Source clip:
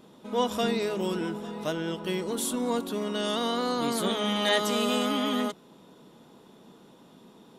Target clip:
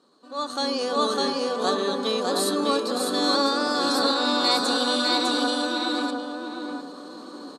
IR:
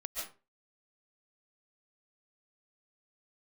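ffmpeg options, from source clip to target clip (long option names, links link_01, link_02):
-filter_complex "[0:a]highpass=200,equalizer=frequency=560:width_type=q:width=4:gain=-4,equalizer=frequency=980:width_type=q:width=4:gain=6,equalizer=frequency=1800:width_type=q:width=4:gain=-9,equalizer=frequency=3500:width_type=q:width=4:gain=8,equalizer=frequency=6900:width_type=q:width=4:gain=5,lowpass=frequency=8100:width=0.5412,lowpass=frequency=8100:width=1.3066,asetrate=52444,aresample=44100,atempo=0.840896,asplit=2[link_01][link_02];[link_02]aecho=0:1:603:0.708[link_03];[link_01][link_03]amix=inputs=2:normalize=0,dynaudnorm=framelen=370:gausssize=3:maxgain=16.5dB,asplit=2[link_04][link_05];[link_05]adelay=705,lowpass=frequency=1100:poles=1,volume=-3.5dB,asplit=2[link_06][link_07];[link_07]adelay=705,lowpass=frequency=1100:poles=1,volume=0.36,asplit=2[link_08][link_09];[link_09]adelay=705,lowpass=frequency=1100:poles=1,volume=0.36,asplit=2[link_10][link_11];[link_11]adelay=705,lowpass=frequency=1100:poles=1,volume=0.36,asplit=2[link_12][link_13];[link_13]adelay=705,lowpass=frequency=1100:poles=1,volume=0.36[link_14];[link_06][link_08][link_10][link_12][link_14]amix=inputs=5:normalize=0[link_15];[link_04][link_15]amix=inputs=2:normalize=0,volume=-8.5dB"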